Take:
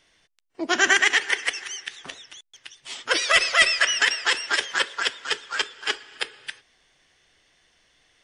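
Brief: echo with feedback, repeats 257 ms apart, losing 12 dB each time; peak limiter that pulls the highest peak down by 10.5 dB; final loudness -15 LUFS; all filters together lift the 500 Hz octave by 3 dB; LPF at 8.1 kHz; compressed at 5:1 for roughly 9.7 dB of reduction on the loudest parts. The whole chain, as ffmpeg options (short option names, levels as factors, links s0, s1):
-af "lowpass=8100,equalizer=f=500:t=o:g=4,acompressor=threshold=0.0631:ratio=5,alimiter=limit=0.1:level=0:latency=1,aecho=1:1:257|514|771:0.251|0.0628|0.0157,volume=6.68"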